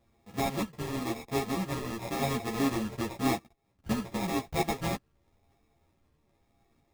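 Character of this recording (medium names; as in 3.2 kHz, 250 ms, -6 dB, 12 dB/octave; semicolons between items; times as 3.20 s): a buzz of ramps at a fixed pitch in blocks of 64 samples; phasing stages 8, 0.94 Hz, lowest notch 740–1900 Hz; aliases and images of a low sample rate 1.5 kHz, jitter 0%; a shimmering, thickened sound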